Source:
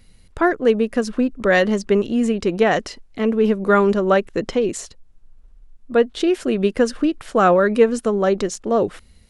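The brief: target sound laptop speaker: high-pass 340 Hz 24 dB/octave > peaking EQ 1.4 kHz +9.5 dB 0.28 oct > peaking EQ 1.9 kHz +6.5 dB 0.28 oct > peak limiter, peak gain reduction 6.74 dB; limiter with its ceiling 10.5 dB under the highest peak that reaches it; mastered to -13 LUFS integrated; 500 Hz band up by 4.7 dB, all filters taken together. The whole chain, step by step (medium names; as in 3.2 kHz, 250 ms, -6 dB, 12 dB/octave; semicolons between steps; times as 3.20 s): peaking EQ 500 Hz +6 dB; peak limiter -8.5 dBFS; high-pass 340 Hz 24 dB/octave; peaking EQ 1.4 kHz +9.5 dB 0.28 oct; peaking EQ 1.9 kHz +6.5 dB 0.28 oct; trim +7.5 dB; peak limiter -3 dBFS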